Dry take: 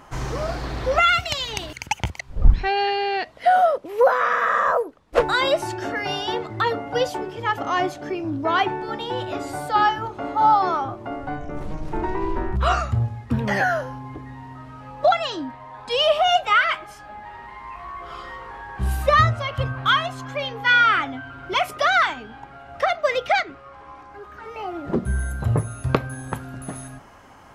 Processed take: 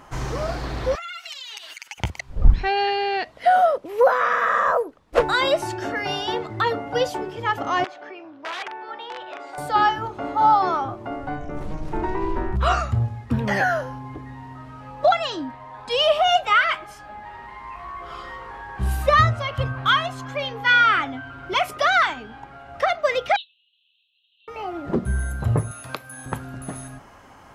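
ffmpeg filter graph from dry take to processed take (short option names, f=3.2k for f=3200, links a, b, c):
-filter_complex "[0:a]asettb=1/sr,asplit=3[a][b][c];[a]atrim=end=0.954[d];[b]atrim=start=0.95:end=1.98,asetpts=PTS-STARTPTS,afade=t=in:d=0.004:c=qsin,afade=t=out:st=1.026:d=0.004:c=qsin,highpass=1.4k,aecho=1:1:7.5:0.99,atrim=end_sample=45423,acompressor=threshold=-33dB:ratio=6:attack=3.2:release=140:knee=1:detection=peak[e];[c]atrim=start=1.976[f];[d][e]acrossfade=d=0.004:c1=hsin:c2=qsin[g];[g][f]acrossfade=d=0.004:c1=qsin:c2=hsin,asettb=1/sr,asplit=3[h][i][j];[h]atrim=end=7.844[k];[i]atrim=start=7.84:end=9.58,asetpts=PTS-STARTPTS,afade=t=in:d=0.004:c=qsin,afade=t=out:st=1.736:d=0.004:c=qsin,acompressor=threshold=-29dB:ratio=2:attack=3.2:release=140:knee=1:detection=peak,aeval=exprs='(mod(11.9*val(0)+1,2)-1)/11.9':c=same,highpass=640,lowpass=3k[l];[j]atrim=start=9.576[m];[k][l]acrossfade=d=0.004:c1=hsin:c2=qsin[n];[n][m]acrossfade=d=0.004:c1=qsin:c2=hsin,asettb=1/sr,asplit=3[o][p][q];[o]atrim=end=23.364[r];[p]atrim=start=23.36:end=24.48,asetpts=PTS-STARTPTS,afade=t=in:d=0.004:c=qsin,afade=t=out:st=1.116:d=0.004:c=qsin,asuperpass=centerf=3300:order=20:qfactor=2.2,asplit=2[s][t];[t]adelay=27,volume=-8dB[u];[s][u]amix=inputs=2:normalize=0,atrim=end_sample=49392[v];[q]atrim=start=24.476[w];[r][v]acrossfade=d=0.004:c1=hsin:c2=qsin[x];[x][w]acrossfade=d=0.004:c1=qsin:c2=hsin,asettb=1/sr,asplit=3[y][z][aa];[y]atrim=end=25.714[ab];[z]atrim=start=25.71:end=26.26,asetpts=PTS-STARTPTS,afade=t=in:d=0.004:c=qsin,afade=t=out:st=0.546:d=0.004:c=qsin,aemphasis=mode=production:type=riaa,acrossover=split=160|4200[ac][ad][ae];[ac]acompressor=threshold=-47dB:ratio=4[af];[ad]acompressor=threshold=-30dB:ratio=4[ag];[ae]acompressor=threshold=-44dB:ratio=4[ah];[af][ag][ah]amix=inputs=3:normalize=0,bandreject=f=390:w=10[ai];[aa]atrim=start=26.256[aj];[ab][ai]acrossfade=d=0.004:c1=hsin:c2=qsin[ak];[ak][aj]acrossfade=d=0.004:c1=qsin:c2=hsin"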